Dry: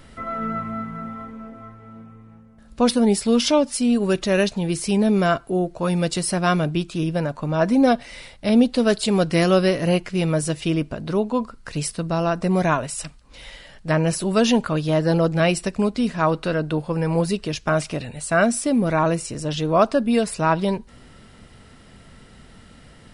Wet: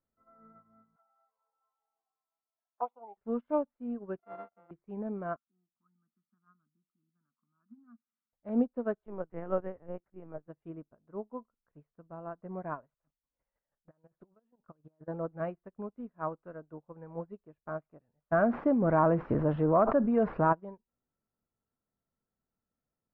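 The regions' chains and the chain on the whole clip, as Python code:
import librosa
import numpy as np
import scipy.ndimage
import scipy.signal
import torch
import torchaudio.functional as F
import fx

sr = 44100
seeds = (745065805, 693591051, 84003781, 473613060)

y = fx.chain(x, sr, fx.highpass_res(hz=820.0, q=4.9),
    fx.env_flanger(rest_ms=3.2, full_db=-19.5), at=(0.96, 3.17))
y = fx.chain(y, sr, fx.sample_sort(block=64),
    fx.highpass(hz=580.0, slope=6),
    fx.peak_eq(hz=1700.0, db=-4.5, octaves=0.37), at=(4.19, 4.71))
y = fx.chain(y, sr, fx.double_bandpass(hz=530.0, octaves=2.5),
    fx.peak_eq(hz=710.0, db=-8.0, octaves=1.3), at=(5.36, 8.33))
y = fx.chain(y, sr, fx.highpass(hz=110.0, slope=24),
    fx.lpc_vocoder(seeds[0], excitation='pitch_kept', order=10), at=(9.04, 10.48))
y = fx.chain(y, sr, fx.over_compress(threshold_db=-24.0, ratio=-1.0),
    fx.chopper(hz=6.2, depth_pct=65, duty_pct=20), at=(12.91, 15.08))
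y = fx.chain(y, sr, fx.cvsd(bps=64000),
    fx.air_absorb(metres=62.0),
    fx.env_flatten(amount_pct=100), at=(18.32, 20.53))
y = scipy.signal.sosfilt(scipy.signal.butter(4, 1400.0, 'lowpass', fs=sr, output='sos'), y)
y = fx.low_shelf(y, sr, hz=180.0, db=-7.0)
y = fx.upward_expand(y, sr, threshold_db=-35.0, expansion=2.5)
y = y * librosa.db_to_amplitude(-7.5)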